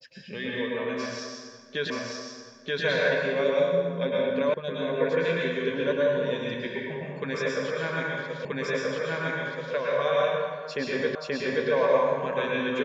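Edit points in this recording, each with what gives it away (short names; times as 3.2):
1.9 repeat of the last 0.93 s
4.54 sound cut off
8.45 repeat of the last 1.28 s
11.15 repeat of the last 0.53 s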